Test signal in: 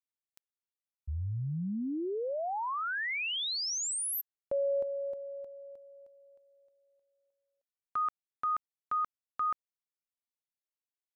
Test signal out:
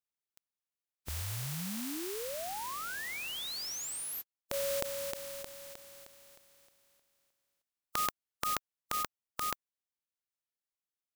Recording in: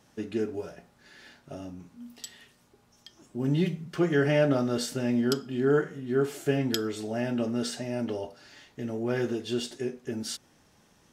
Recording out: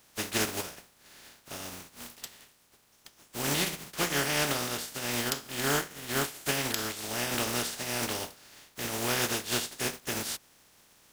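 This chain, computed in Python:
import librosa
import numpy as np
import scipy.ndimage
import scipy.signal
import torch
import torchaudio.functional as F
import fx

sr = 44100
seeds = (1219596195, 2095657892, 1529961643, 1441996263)

y = fx.spec_flatten(x, sr, power=0.31)
y = fx.rider(y, sr, range_db=5, speed_s=2.0)
y = F.gain(torch.from_numpy(y), -3.5).numpy()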